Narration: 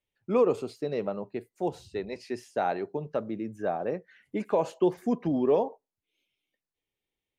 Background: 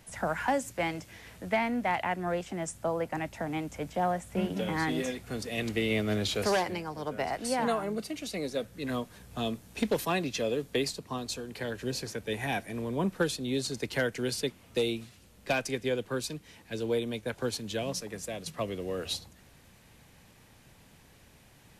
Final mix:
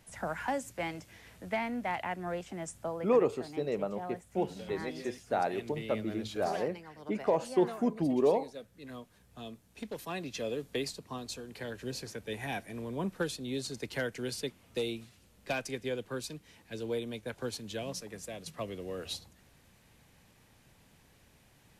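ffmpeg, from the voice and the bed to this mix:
-filter_complex "[0:a]adelay=2750,volume=0.75[s0];[1:a]volume=1.33,afade=t=out:st=2.8:d=0.51:silence=0.421697,afade=t=in:st=9.93:d=0.54:silence=0.421697[s1];[s0][s1]amix=inputs=2:normalize=0"

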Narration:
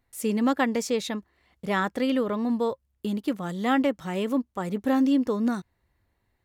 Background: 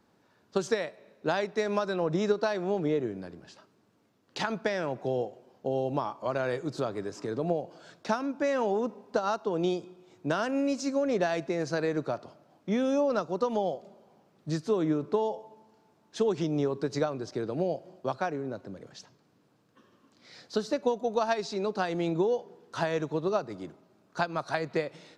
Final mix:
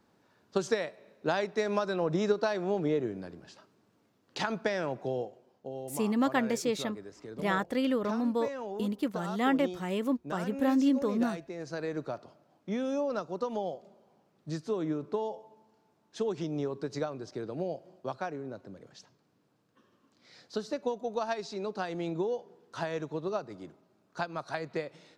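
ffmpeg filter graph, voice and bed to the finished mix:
-filter_complex "[0:a]adelay=5750,volume=0.631[s0];[1:a]volume=1.68,afade=t=out:st=4.83:d=0.89:silence=0.334965,afade=t=in:st=11.52:d=0.44:silence=0.530884[s1];[s0][s1]amix=inputs=2:normalize=0"

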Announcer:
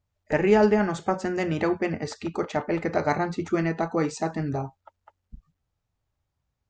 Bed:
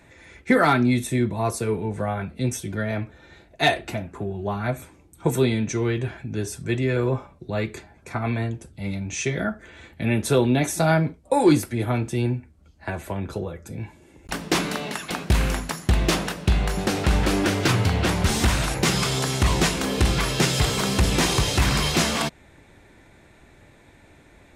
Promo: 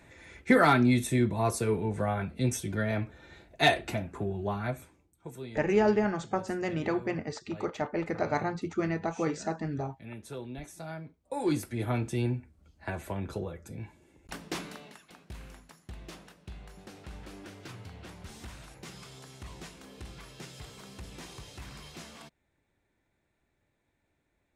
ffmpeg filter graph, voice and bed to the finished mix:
-filter_complex "[0:a]adelay=5250,volume=0.531[s0];[1:a]volume=3.98,afade=t=out:st=4.33:d=0.87:silence=0.125893,afade=t=in:st=11.17:d=0.78:silence=0.16788,afade=t=out:st=13.42:d=1.63:silence=0.112202[s1];[s0][s1]amix=inputs=2:normalize=0"

